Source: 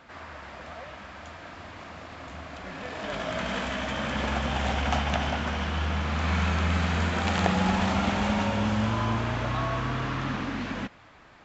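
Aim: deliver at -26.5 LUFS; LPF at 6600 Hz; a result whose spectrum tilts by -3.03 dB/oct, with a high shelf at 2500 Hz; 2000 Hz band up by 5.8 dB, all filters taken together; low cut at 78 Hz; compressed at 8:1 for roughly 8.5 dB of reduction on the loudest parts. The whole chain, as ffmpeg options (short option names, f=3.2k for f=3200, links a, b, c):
-af "highpass=78,lowpass=6.6k,equalizer=f=2k:t=o:g=5.5,highshelf=f=2.5k:g=4,acompressor=threshold=-26dB:ratio=8,volume=4.5dB"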